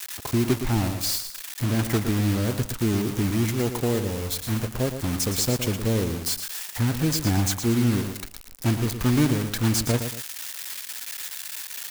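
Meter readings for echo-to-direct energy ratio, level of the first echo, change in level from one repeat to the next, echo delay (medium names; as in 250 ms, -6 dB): -8.5 dB, -9.0 dB, -9.5 dB, 115 ms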